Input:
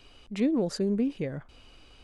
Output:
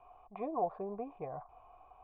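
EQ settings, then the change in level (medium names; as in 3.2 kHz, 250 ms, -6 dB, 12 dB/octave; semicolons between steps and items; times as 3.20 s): cascade formant filter a; peaking EQ 240 Hz -10 dB 0.91 oct; band-stop 550 Hz, Q 12; +15.5 dB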